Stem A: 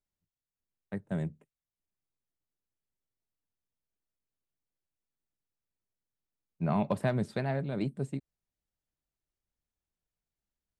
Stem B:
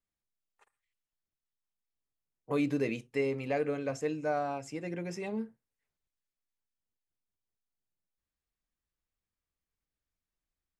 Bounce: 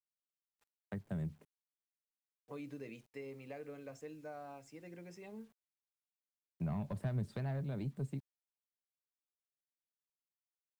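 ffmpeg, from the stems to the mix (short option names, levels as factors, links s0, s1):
-filter_complex "[0:a]asoftclip=type=tanh:threshold=0.0891,volume=1.19[s0];[1:a]volume=0.2[s1];[s0][s1]amix=inputs=2:normalize=0,acrossover=split=130[s2][s3];[s3]acompressor=threshold=0.00708:ratio=6[s4];[s2][s4]amix=inputs=2:normalize=0,acrusher=bits=11:mix=0:aa=0.000001"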